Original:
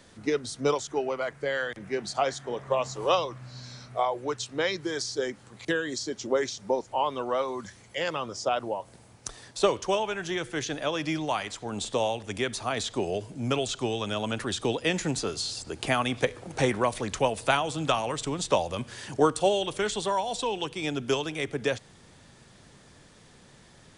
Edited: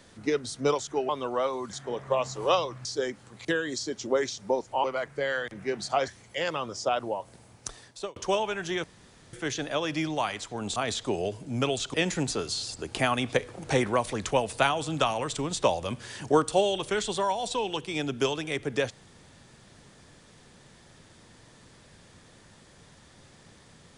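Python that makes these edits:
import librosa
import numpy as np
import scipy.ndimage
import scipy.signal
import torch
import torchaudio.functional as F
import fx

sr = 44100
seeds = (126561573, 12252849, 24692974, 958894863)

y = fx.edit(x, sr, fx.swap(start_s=1.09, length_s=1.24, other_s=7.04, other_length_s=0.64),
    fx.cut(start_s=3.45, length_s=1.6),
    fx.fade_out_span(start_s=9.28, length_s=0.48),
    fx.insert_room_tone(at_s=10.44, length_s=0.49),
    fx.cut(start_s=11.87, length_s=0.78),
    fx.cut(start_s=13.83, length_s=0.99), tone=tone)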